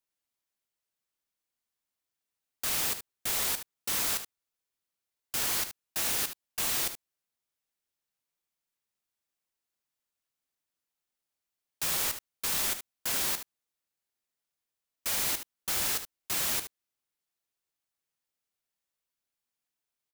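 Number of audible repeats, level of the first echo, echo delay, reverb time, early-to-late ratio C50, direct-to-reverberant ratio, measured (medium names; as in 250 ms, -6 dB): 1, -10.5 dB, 74 ms, no reverb, no reverb, no reverb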